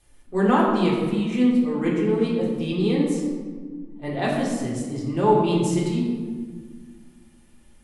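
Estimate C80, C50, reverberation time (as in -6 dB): 4.0 dB, 2.0 dB, 1.6 s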